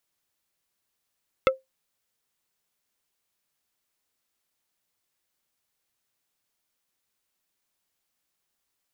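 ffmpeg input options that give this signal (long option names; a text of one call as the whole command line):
ffmpeg -f lavfi -i "aevalsrc='0.237*pow(10,-3*t/0.17)*sin(2*PI*527*t)+0.178*pow(10,-3*t/0.057)*sin(2*PI*1317.5*t)+0.133*pow(10,-3*t/0.032)*sin(2*PI*2108*t)+0.1*pow(10,-3*t/0.025)*sin(2*PI*2635*t)+0.075*pow(10,-3*t/0.018)*sin(2*PI*3425.5*t)':duration=0.45:sample_rate=44100" out.wav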